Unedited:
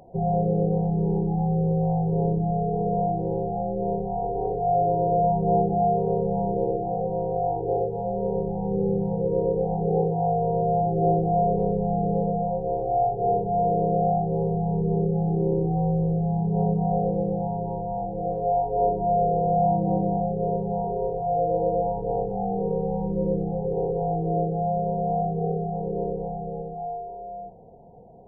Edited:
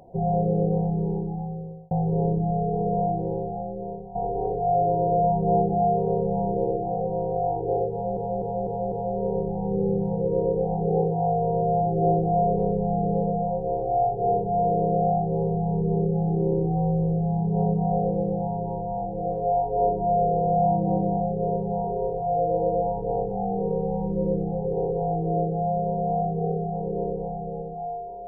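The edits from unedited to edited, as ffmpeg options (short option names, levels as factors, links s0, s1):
-filter_complex "[0:a]asplit=7[s0][s1][s2][s3][s4][s5][s6];[s0]atrim=end=1.91,asetpts=PTS-STARTPTS,afade=t=out:st=0.8:d=1.11[s7];[s1]atrim=start=1.91:end=4.15,asetpts=PTS-STARTPTS,afade=t=in:d=0.004:c=hsin,afade=t=out:st=1.22:d=1.02:silence=0.223872[s8];[s2]atrim=start=4.15:end=8.172,asetpts=PTS-STARTPTS,afade=t=in:d=0.004:c=hsin:silence=0.223872[s9];[s3]atrim=start=7.918:end=8.172[s10];[s4]atrim=start=7.918:end=8.172[s11];[s5]atrim=start=7.918:end=8.172[s12];[s6]atrim=start=7.918[s13];[s7][s8][s9]concat=n=3:v=0:a=1[s14];[s14][s10]acrossfade=d=0.004:c1=hsin:c2=hsin[s15];[s15][s11]acrossfade=d=0.004:c1=hsin:c2=hsin[s16];[s16][s12]acrossfade=d=0.004:c1=hsin:c2=hsin[s17];[s17][s13]acrossfade=d=0.004:c1=hsin:c2=hsin"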